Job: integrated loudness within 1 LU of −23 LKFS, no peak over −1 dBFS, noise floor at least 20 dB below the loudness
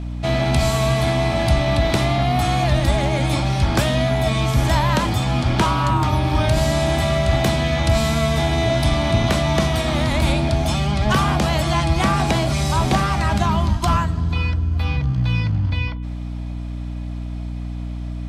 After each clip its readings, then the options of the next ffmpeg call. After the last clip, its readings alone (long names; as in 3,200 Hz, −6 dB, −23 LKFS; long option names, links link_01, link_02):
mains hum 60 Hz; hum harmonics up to 300 Hz; level of the hum −25 dBFS; integrated loudness −19.0 LKFS; sample peak −5.5 dBFS; target loudness −23.0 LKFS
→ -af "bandreject=frequency=60:width_type=h:width=6,bandreject=frequency=120:width_type=h:width=6,bandreject=frequency=180:width_type=h:width=6,bandreject=frequency=240:width_type=h:width=6,bandreject=frequency=300:width_type=h:width=6"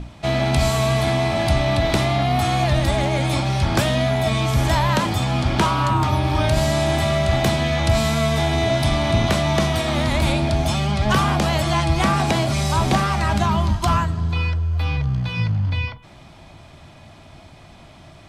mains hum none found; integrated loudness −20.0 LKFS; sample peak −6.0 dBFS; target loudness −23.0 LKFS
→ -af "volume=-3dB"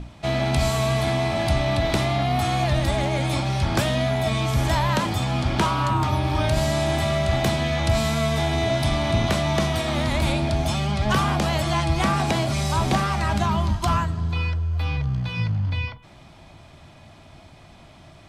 integrated loudness −23.0 LKFS; sample peak −9.0 dBFS; background noise floor −48 dBFS